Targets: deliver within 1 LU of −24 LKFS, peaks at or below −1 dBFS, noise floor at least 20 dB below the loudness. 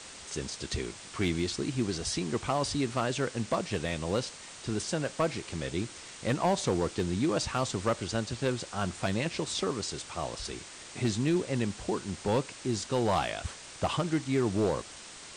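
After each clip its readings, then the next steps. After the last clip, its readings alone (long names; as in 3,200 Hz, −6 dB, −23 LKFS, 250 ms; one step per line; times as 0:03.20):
share of clipped samples 0.5%; peaks flattened at −20.0 dBFS; background noise floor −47 dBFS; target noise floor −52 dBFS; integrated loudness −31.5 LKFS; sample peak −20.0 dBFS; target loudness −24.0 LKFS
→ clipped peaks rebuilt −20 dBFS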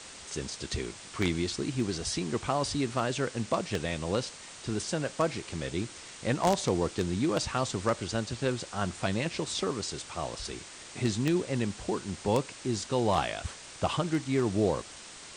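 share of clipped samples 0.0%; background noise floor −47 dBFS; target noise floor −52 dBFS
→ broadband denoise 6 dB, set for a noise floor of −47 dBFS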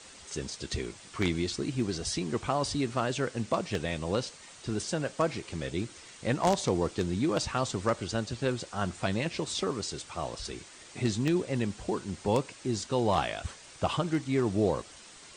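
background noise floor −51 dBFS; target noise floor −52 dBFS
→ broadband denoise 6 dB, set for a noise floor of −51 dBFS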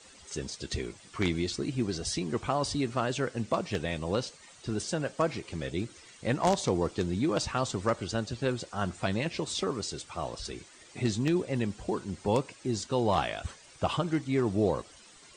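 background noise floor −55 dBFS; integrated loudness −31.5 LKFS; sample peak −11.0 dBFS; target loudness −24.0 LKFS
→ level +7.5 dB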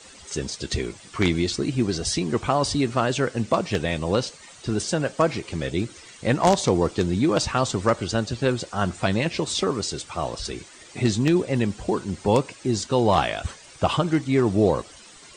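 integrated loudness −24.0 LKFS; sample peak −3.5 dBFS; background noise floor −47 dBFS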